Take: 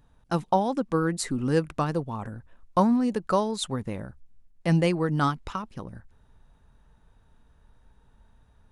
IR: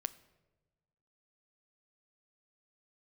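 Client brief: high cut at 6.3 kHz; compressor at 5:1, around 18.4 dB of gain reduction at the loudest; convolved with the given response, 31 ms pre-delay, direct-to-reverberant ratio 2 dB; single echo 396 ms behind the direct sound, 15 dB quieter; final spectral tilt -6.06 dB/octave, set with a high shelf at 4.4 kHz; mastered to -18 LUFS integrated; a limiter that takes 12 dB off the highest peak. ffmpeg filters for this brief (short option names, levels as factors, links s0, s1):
-filter_complex "[0:a]lowpass=6300,highshelf=f=4400:g=-4.5,acompressor=threshold=0.0112:ratio=5,alimiter=level_in=3.76:limit=0.0631:level=0:latency=1,volume=0.266,aecho=1:1:396:0.178,asplit=2[s0][s1];[1:a]atrim=start_sample=2205,adelay=31[s2];[s1][s2]afir=irnorm=-1:irlink=0,volume=0.891[s3];[s0][s3]amix=inputs=2:normalize=0,volume=18.8"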